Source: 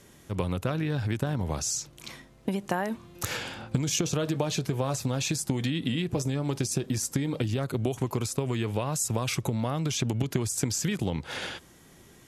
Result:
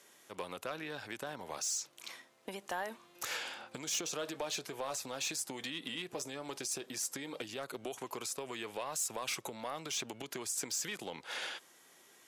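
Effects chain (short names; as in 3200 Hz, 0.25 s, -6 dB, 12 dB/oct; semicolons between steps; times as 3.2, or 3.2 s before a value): Bessel high-pass 650 Hz, order 2; soft clip -25 dBFS, distortion -16 dB; gain -3.5 dB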